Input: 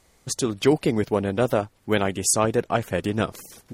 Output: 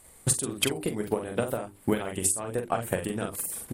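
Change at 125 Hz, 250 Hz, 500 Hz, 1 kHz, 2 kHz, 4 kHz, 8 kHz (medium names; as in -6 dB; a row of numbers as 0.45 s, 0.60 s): -6.0 dB, -7.0 dB, -7.5 dB, -7.0 dB, -6.5 dB, -2.5 dB, -1.5 dB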